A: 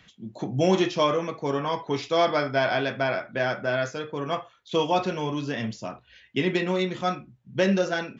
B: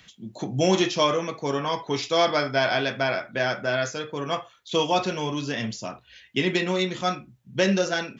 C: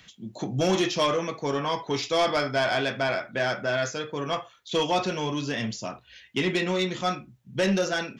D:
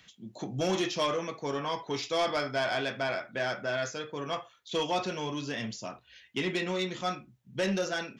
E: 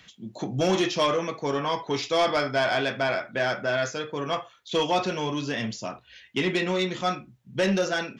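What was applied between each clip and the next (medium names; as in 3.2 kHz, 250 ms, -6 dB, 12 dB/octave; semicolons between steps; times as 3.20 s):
treble shelf 3.7 kHz +10.5 dB
saturation -16 dBFS, distortion -16 dB
bass shelf 160 Hz -3.5 dB; trim -5 dB
treble shelf 5.8 kHz -4.5 dB; trim +6 dB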